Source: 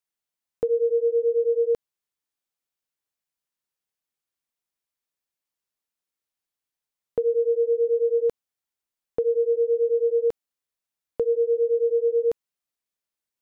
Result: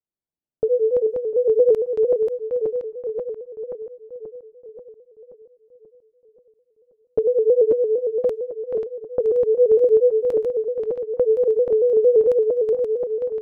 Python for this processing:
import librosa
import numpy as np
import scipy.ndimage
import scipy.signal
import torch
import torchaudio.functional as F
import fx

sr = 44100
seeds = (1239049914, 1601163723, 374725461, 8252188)

y = fx.reverse_delay_fb(x, sr, ms=266, feedback_pct=78, wet_db=-4)
y = fx.env_lowpass(y, sr, base_hz=470.0, full_db=-20.5)
y = fx.vibrato_shape(y, sr, shape='square', rate_hz=4.4, depth_cents=100.0)
y = y * librosa.db_to_amplitude(3.5)